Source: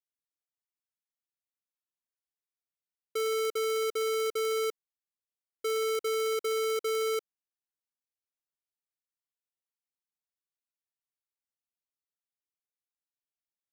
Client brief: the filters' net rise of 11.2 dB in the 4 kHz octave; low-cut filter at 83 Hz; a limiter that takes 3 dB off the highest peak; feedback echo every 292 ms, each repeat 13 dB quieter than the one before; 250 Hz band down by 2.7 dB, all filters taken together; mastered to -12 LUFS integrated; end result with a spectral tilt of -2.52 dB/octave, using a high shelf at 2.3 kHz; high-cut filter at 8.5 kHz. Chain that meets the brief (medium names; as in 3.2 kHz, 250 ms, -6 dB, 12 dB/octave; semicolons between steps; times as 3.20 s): high-pass 83 Hz; low-pass 8.5 kHz; peaking EQ 250 Hz -7 dB; treble shelf 2.3 kHz +6.5 dB; peaking EQ 4 kHz +8.5 dB; peak limiter -19.5 dBFS; feedback delay 292 ms, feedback 22%, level -13 dB; trim +18.5 dB